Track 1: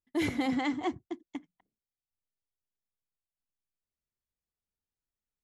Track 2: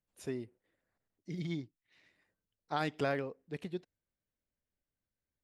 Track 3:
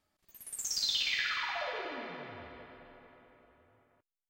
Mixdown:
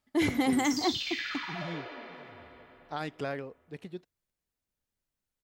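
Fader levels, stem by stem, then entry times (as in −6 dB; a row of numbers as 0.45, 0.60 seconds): +3.0, −2.0, −3.0 decibels; 0.00, 0.20, 0.00 seconds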